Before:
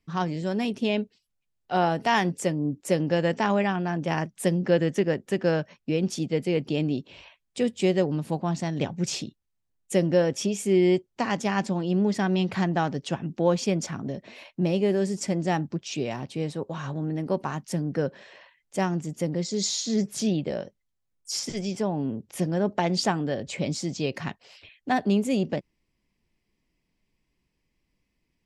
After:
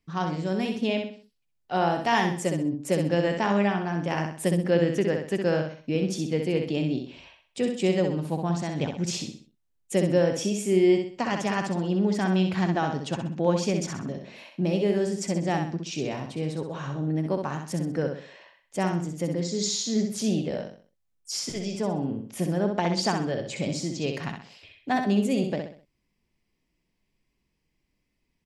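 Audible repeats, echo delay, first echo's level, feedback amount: 4, 64 ms, -5.5 dB, 37%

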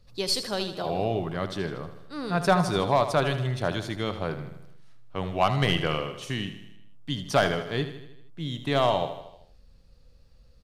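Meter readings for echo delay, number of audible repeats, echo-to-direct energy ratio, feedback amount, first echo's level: 78 ms, 5, -9.5 dB, 56%, -11.0 dB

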